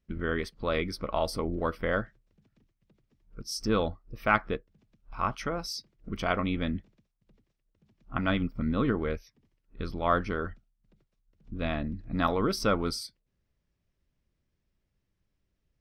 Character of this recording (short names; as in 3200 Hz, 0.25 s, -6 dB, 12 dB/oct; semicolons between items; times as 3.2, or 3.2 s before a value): noise floor -80 dBFS; spectral tilt -4.5 dB/oct